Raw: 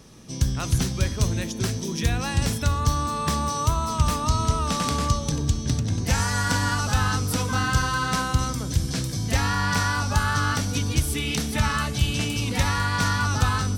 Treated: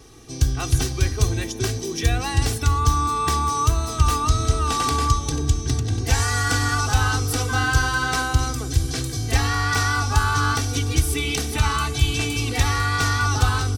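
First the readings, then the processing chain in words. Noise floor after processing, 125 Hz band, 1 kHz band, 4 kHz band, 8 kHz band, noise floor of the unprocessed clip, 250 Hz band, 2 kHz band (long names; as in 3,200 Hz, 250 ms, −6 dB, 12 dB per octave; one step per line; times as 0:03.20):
−30 dBFS, +2.5 dB, +3.0 dB, +2.5 dB, +3.0 dB, −31 dBFS, −1.5 dB, +3.0 dB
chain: comb filter 2.6 ms, depth 95%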